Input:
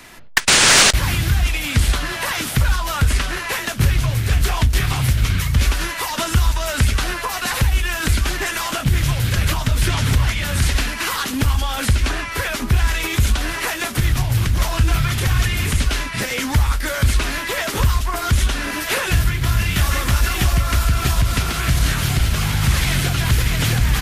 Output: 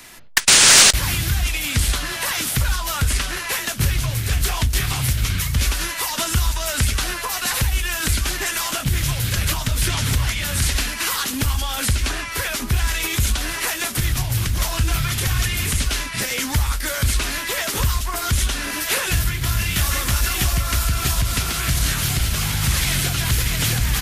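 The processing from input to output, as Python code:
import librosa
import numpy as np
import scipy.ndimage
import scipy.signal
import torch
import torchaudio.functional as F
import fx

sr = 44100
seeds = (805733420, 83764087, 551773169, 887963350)

y = fx.high_shelf(x, sr, hz=3600.0, db=9.0)
y = y * 10.0 ** (-4.0 / 20.0)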